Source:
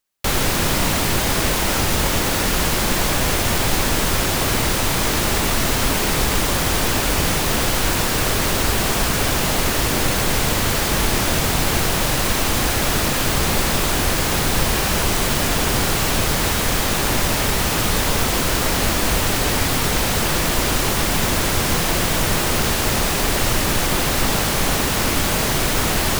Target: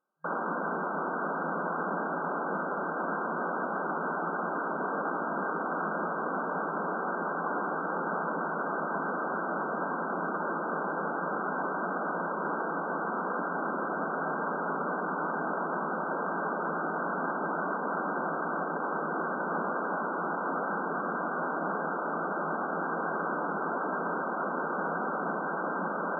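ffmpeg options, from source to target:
ffmpeg -i in.wav -af "lowshelf=frequency=210:gain=-5.5,aeval=exprs='(mod(11.9*val(0)+1,2)-1)/11.9':channel_layout=same,afftfilt=real='re*between(b*sr/4096,160,1600)':imag='im*between(b*sr/4096,160,1600)':win_size=4096:overlap=0.75,volume=6dB" out.wav

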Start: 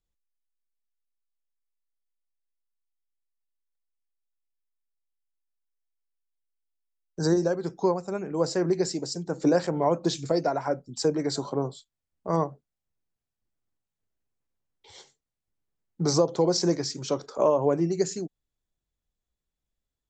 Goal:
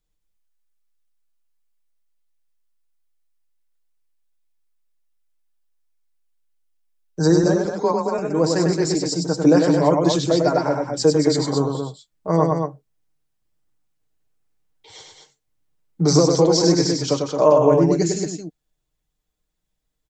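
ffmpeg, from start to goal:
ffmpeg -i in.wav -filter_complex "[0:a]asettb=1/sr,asplit=3[link_01][link_02][link_03];[link_01]atrim=end=7.434[link_04];[link_02]atrim=start=7.43:end=8.19,asetpts=PTS-STARTPTS,afade=type=in:duration=0.004:curve=qsin,afade=type=out:start_time=0.756:duration=0.004:curve=qsin,afreqshift=26[link_05];[link_03]atrim=start=8.186[link_06];[link_04][link_05]acrossfade=duration=0.004:curve1=hsin:curve2=qsin[link_07];[link_07][link_06]acrossfade=duration=0.004:curve1=qsin:curve2=hsin,aecho=1:1:6.5:0.51,aecho=1:1:99.13|221.6:0.631|0.501,volume=5dB" out.wav

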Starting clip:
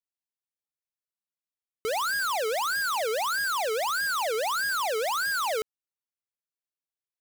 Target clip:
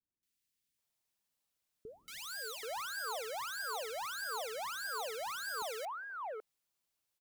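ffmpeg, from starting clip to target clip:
ffmpeg -i in.wav -filter_complex "[0:a]aeval=exprs='0.0422*sin(PI/2*2.24*val(0)/0.0422)':channel_layout=same,asettb=1/sr,asplit=3[link_01][link_02][link_03];[link_01]atrim=end=2.154[link_04];[link_02]atrim=start=2.15:end=4.16,asetpts=PTS-STARTPTS,afade=type=in:duration=0.004:curve=qsin,afade=type=out:start_time=2.006:duration=0.004:curve=qsin,equalizer=frequency=240:width_type=o:width=0.33:gain=-14[link_05];[link_03]atrim=start=4.156[link_06];[link_04][link_05]acrossfade=duration=0.004:curve1=hsin:curve2=qsin[link_07];[link_07][link_06]acrossfade=duration=0.004:curve1=qsin:curve2=hsin,acrossover=split=400|1600[link_08][link_09][link_10];[link_10]adelay=230[link_11];[link_09]adelay=780[link_12];[link_08][link_12][link_11]amix=inputs=3:normalize=0,volume=-1dB" out.wav

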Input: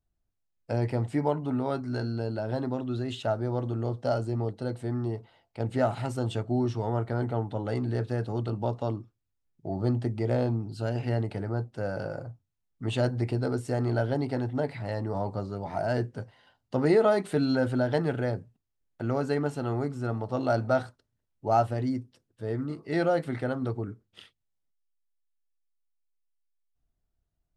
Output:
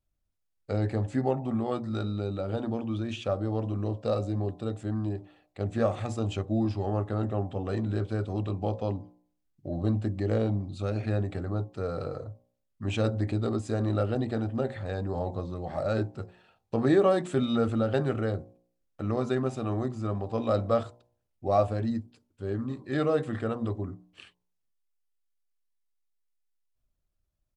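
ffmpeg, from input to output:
ffmpeg -i in.wav -af "asetrate=39289,aresample=44100,atempo=1.12246,bandreject=frequency=60.03:width_type=h:width=4,bandreject=frequency=120.06:width_type=h:width=4,bandreject=frequency=180.09:width_type=h:width=4,bandreject=frequency=240.12:width_type=h:width=4,bandreject=frequency=300.15:width_type=h:width=4,bandreject=frequency=360.18:width_type=h:width=4,bandreject=frequency=420.21:width_type=h:width=4,bandreject=frequency=480.24:width_type=h:width=4,bandreject=frequency=540.27:width_type=h:width=4,bandreject=frequency=600.3:width_type=h:width=4,bandreject=frequency=660.33:width_type=h:width=4,bandreject=frequency=720.36:width_type=h:width=4,bandreject=frequency=780.39:width_type=h:width=4,bandreject=frequency=840.42:width_type=h:width=4,bandreject=frequency=900.45:width_type=h:width=4,bandreject=frequency=960.48:width_type=h:width=4,bandreject=frequency=1020.51:width_type=h:width=4,bandreject=frequency=1080.54:width_type=h:width=4" out.wav

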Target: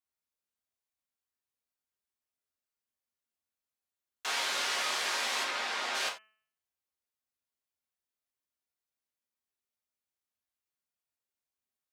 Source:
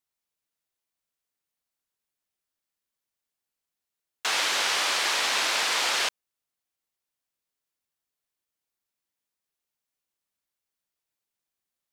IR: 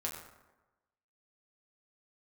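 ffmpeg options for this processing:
-filter_complex "[0:a]asplit=3[link_01][link_02][link_03];[link_01]afade=type=out:start_time=5.43:duration=0.02[link_04];[link_02]aemphasis=mode=reproduction:type=50kf,afade=type=in:start_time=5.43:duration=0.02,afade=type=out:start_time=5.94:duration=0.02[link_05];[link_03]afade=type=in:start_time=5.94:duration=0.02[link_06];[link_04][link_05][link_06]amix=inputs=3:normalize=0,bandreject=frequency=217:width_type=h:width=4,bandreject=frequency=434:width_type=h:width=4,bandreject=frequency=651:width_type=h:width=4,bandreject=frequency=868:width_type=h:width=4,bandreject=frequency=1085:width_type=h:width=4,bandreject=frequency=1302:width_type=h:width=4,bandreject=frequency=1519:width_type=h:width=4,bandreject=frequency=1736:width_type=h:width=4,bandreject=frequency=1953:width_type=h:width=4,bandreject=frequency=2170:width_type=h:width=4,bandreject=frequency=2387:width_type=h:width=4,bandreject=frequency=2604:width_type=h:width=4,bandreject=frequency=2821:width_type=h:width=4,bandreject=frequency=3038:width_type=h:width=4[link_07];[1:a]atrim=start_sample=2205,afade=type=out:start_time=0.14:duration=0.01,atrim=end_sample=6615[link_08];[link_07][link_08]afir=irnorm=-1:irlink=0,volume=-7dB"

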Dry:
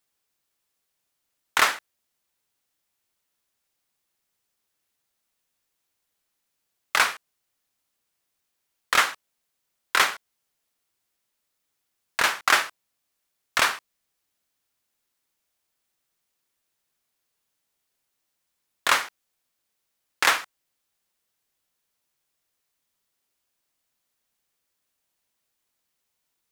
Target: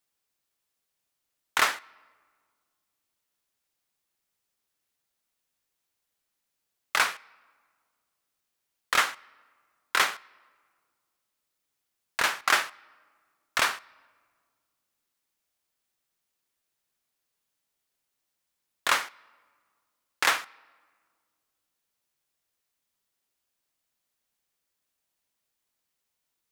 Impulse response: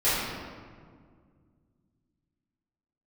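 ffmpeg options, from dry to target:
-filter_complex "[0:a]asplit=2[link_01][link_02];[1:a]atrim=start_sample=2205,lowshelf=frequency=490:gain=-9.5[link_03];[link_02][link_03]afir=irnorm=-1:irlink=0,volume=-37dB[link_04];[link_01][link_04]amix=inputs=2:normalize=0,volume=-3.5dB"

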